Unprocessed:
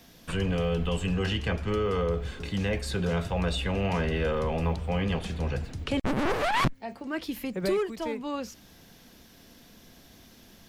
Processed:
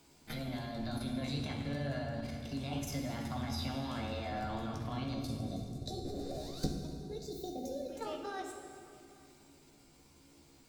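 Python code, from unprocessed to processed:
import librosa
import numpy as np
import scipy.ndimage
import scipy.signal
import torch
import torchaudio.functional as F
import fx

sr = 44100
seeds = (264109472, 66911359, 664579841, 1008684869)

y = fx.pitch_heads(x, sr, semitones=5.5)
y = fx.level_steps(y, sr, step_db=12)
y = fx.comb_fb(y, sr, f0_hz=280.0, decay_s=0.38, harmonics='odd', damping=0.0, mix_pct=70)
y = y + 10.0 ** (-24.0 / 20.0) * np.pad(y, (int(842 * sr / 1000.0), 0))[:len(y)]
y = fx.spec_box(y, sr, start_s=5.14, length_s=2.75, low_hz=760.0, high_hz=3500.0, gain_db=-21)
y = fx.rev_fdn(y, sr, rt60_s=2.2, lf_ratio=1.5, hf_ratio=0.8, size_ms=39.0, drr_db=1.5)
y = y * librosa.db_to_amplitude(5.0)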